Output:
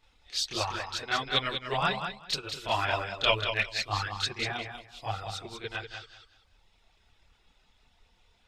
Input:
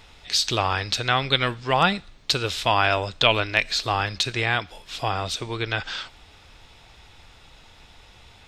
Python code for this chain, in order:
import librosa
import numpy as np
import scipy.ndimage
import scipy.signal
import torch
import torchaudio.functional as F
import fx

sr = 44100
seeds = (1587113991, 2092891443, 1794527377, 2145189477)

p1 = fx.hum_notches(x, sr, base_hz=60, count=2)
p2 = fx.dereverb_blind(p1, sr, rt60_s=1.2)
p3 = fx.chorus_voices(p2, sr, voices=4, hz=0.85, base_ms=29, depth_ms=2.9, mix_pct=65)
p4 = p3 + fx.echo_feedback(p3, sr, ms=192, feedback_pct=28, wet_db=-5, dry=0)
p5 = fx.upward_expand(p4, sr, threshold_db=-38.0, expansion=1.5)
y = p5 * 10.0 ** (-2.5 / 20.0)